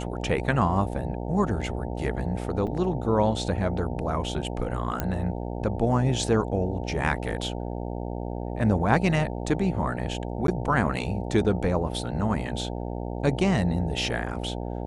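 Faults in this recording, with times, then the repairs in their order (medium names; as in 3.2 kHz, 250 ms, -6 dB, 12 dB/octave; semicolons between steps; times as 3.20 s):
buzz 60 Hz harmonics 15 -32 dBFS
2.67–2.68 s: dropout 6.8 ms
5.00 s: pop -11 dBFS
10.47–10.48 s: dropout 12 ms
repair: de-click; de-hum 60 Hz, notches 15; interpolate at 2.67 s, 6.8 ms; interpolate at 10.47 s, 12 ms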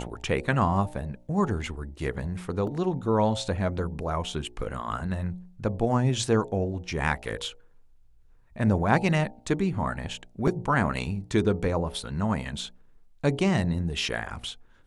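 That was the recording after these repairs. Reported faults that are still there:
nothing left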